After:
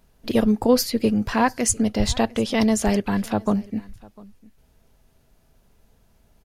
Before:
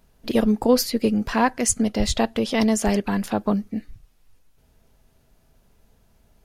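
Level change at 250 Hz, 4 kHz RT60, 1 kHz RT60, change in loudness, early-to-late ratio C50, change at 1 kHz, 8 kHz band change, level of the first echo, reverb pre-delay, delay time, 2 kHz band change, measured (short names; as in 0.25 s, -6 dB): +0.5 dB, none, none, +0.5 dB, none, 0.0 dB, 0.0 dB, -23.5 dB, none, 0.7 s, 0.0 dB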